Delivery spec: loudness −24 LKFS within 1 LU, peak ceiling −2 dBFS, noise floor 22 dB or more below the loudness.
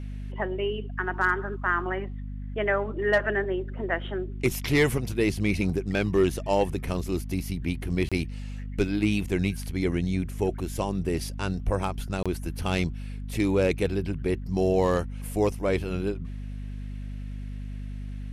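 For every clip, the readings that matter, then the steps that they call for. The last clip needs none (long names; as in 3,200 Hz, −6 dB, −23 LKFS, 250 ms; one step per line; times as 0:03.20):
number of dropouts 2; longest dropout 26 ms; mains hum 50 Hz; hum harmonics up to 250 Hz; level of the hum −33 dBFS; integrated loudness −27.5 LKFS; sample peak −12.0 dBFS; target loudness −24.0 LKFS
→ repair the gap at 0:08.09/0:12.23, 26 ms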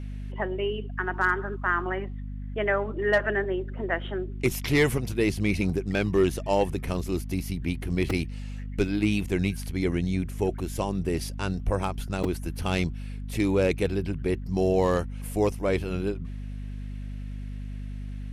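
number of dropouts 0; mains hum 50 Hz; hum harmonics up to 250 Hz; level of the hum −33 dBFS
→ mains-hum notches 50/100/150/200/250 Hz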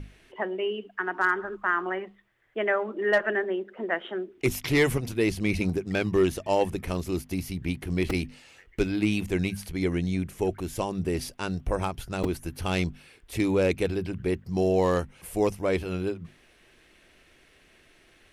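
mains hum none found; integrated loudness −28.0 LKFS; sample peak −11.5 dBFS; target loudness −24.0 LKFS
→ level +4 dB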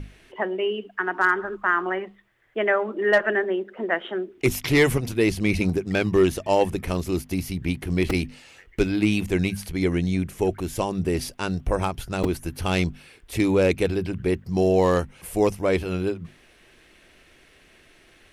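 integrated loudness −24.0 LKFS; sample peak −7.5 dBFS; background noise floor −55 dBFS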